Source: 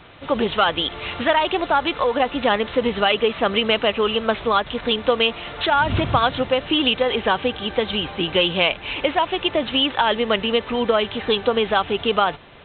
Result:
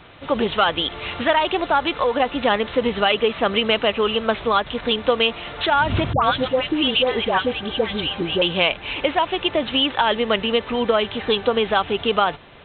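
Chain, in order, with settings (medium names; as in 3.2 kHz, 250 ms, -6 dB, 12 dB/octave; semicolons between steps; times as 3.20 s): 6.13–8.42 s: phase dispersion highs, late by 105 ms, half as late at 1.2 kHz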